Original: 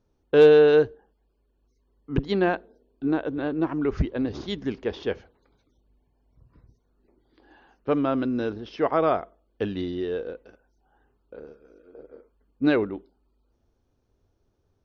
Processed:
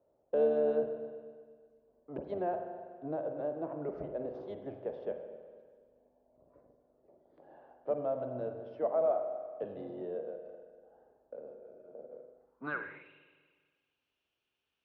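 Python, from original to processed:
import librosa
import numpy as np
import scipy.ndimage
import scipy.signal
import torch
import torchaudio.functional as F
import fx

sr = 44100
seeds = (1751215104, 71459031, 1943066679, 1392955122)

y = fx.octave_divider(x, sr, octaves=1, level_db=2.0)
y = fx.rev_spring(y, sr, rt60_s=1.3, pass_ms=(40, 48), chirp_ms=50, drr_db=6.0)
y = fx.filter_sweep_bandpass(y, sr, from_hz=610.0, to_hz=2800.0, start_s=12.32, end_s=13.12, q=5.8)
y = fx.band_squash(y, sr, depth_pct=40)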